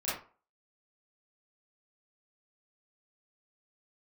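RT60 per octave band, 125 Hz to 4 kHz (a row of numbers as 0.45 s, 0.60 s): 0.35 s, 0.35 s, 0.40 s, 0.40 s, 0.30 s, 0.25 s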